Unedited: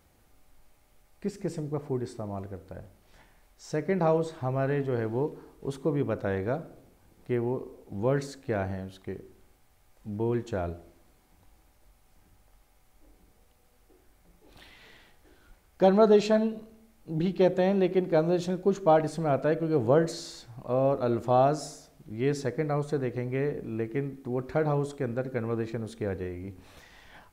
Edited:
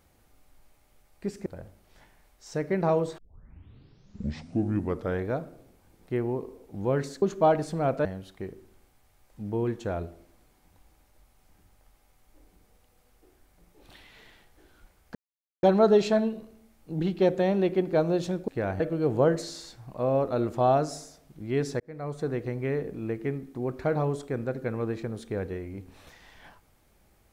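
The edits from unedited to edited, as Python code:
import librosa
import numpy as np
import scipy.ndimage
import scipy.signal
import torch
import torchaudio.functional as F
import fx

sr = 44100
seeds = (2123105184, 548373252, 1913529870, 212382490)

y = fx.edit(x, sr, fx.cut(start_s=1.46, length_s=1.18),
    fx.tape_start(start_s=4.36, length_s=2.08),
    fx.swap(start_s=8.4, length_s=0.32, other_s=18.67, other_length_s=0.83),
    fx.insert_silence(at_s=15.82, length_s=0.48),
    fx.fade_in_span(start_s=22.5, length_s=0.52), tone=tone)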